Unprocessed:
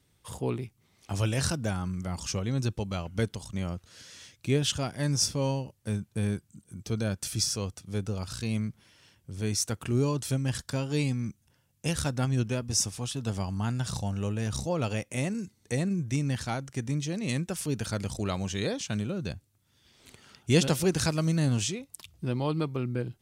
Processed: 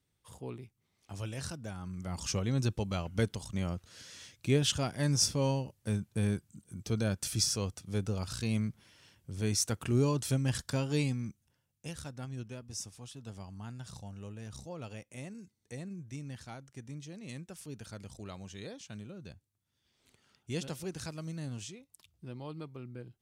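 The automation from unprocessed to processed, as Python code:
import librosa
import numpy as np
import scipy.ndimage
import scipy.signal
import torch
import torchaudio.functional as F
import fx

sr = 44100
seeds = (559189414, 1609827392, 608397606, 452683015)

y = fx.gain(x, sr, db=fx.line((1.73, -11.5), (2.26, -1.5), (10.9, -1.5), (12.01, -14.0)))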